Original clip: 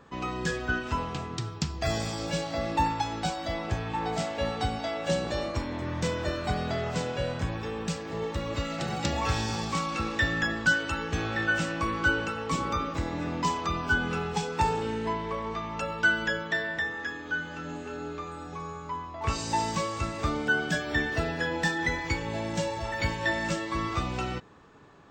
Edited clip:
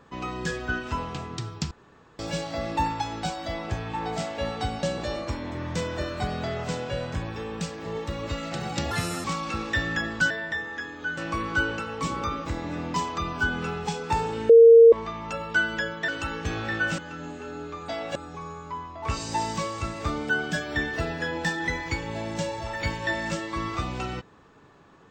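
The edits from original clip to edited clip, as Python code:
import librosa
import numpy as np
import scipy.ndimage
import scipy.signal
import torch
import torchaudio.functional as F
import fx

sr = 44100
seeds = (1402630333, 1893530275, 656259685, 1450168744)

y = fx.edit(x, sr, fx.room_tone_fill(start_s=1.71, length_s=0.48),
    fx.move(start_s=4.83, length_s=0.27, to_s=18.34),
    fx.speed_span(start_s=9.18, length_s=0.52, speed=1.56),
    fx.swap(start_s=10.76, length_s=0.9, other_s=16.57, other_length_s=0.87),
    fx.bleep(start_s=14.98, length_s=0.43, hz=460.0, db=-8.0), tone=tone)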